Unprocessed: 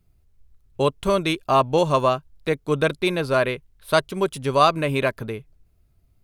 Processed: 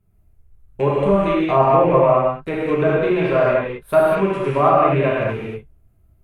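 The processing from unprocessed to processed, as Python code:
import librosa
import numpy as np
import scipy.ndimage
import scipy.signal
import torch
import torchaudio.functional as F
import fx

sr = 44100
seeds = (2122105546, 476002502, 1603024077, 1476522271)

y = fx.rattle_buzz(x, sr, strikes_db=-32.0, level_db=-19.0)
y = fx.peak_eq(y, sr, hz=4700.0, db=-14.0, octaves=1.5)
y = fx.env_lowpass_down(y, sr, base_hz=1300.0, full_db=-15.0)
y = fx.rev_gated(y, sr, seeds[0], gate_ms=260, shape='flat', drr_db=-6.0)
y = y * 10.0 ** (-1.5 / 20.0)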